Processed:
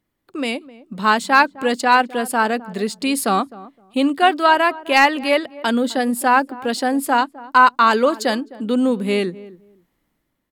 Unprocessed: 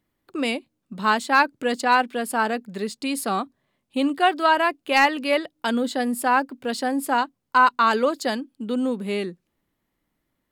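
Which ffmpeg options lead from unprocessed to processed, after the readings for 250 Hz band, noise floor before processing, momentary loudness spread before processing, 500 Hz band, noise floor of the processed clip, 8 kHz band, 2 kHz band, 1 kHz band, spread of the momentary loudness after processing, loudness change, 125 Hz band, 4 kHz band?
+5.0 dB, −77 dBFS, 10 LU, +5.0 dB, −72 dBFS, +5.0 dB, +4.5 dB, +4.5 dB, 11 LU, +4.5 dB, can't be measured, +4.5 dB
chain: -filter_complex "[0:a]dynaudnorm=framelen=240:gausssize=5:maxgain=7dB,asplit=2[link_01][link_02];[link_02]adelay=258,lowpass=frequency=880:poles=1,volume=-17dB,asplit=2[link_03][link_04];[link_04]adelay=258,lowpass=frequency=880:poles=1,volume=0.2[link_05];[link_01][link_03][link_05]amix=inputs=3:normalize=0"

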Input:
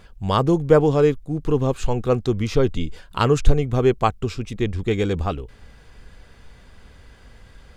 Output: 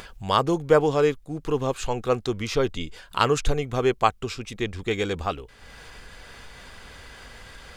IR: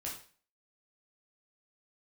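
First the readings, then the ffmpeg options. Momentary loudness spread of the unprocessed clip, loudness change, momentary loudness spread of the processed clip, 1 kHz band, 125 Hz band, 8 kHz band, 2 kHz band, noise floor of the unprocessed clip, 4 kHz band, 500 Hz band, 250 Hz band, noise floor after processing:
11 LU, −4.0 dB, 23 LU, 0.0 dB, −9.0 dB, +2.0 dB, +1.5 dB, −48 dBFS, +2.0 dB, −3.5 dB, −6.0 dB, −51 dBFS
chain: -af "lowshelf=frequency=420:gain=-12,acompressor=mode=upward:threshold=-36dB:ratio=2.5,volume=2dB"

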